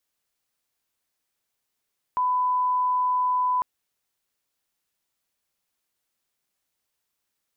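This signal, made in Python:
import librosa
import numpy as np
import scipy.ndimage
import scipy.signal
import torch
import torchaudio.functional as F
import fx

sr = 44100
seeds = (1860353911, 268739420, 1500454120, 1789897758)

y = fx.lineup_tone(sr, length_s=1.45, level_db=-20.0)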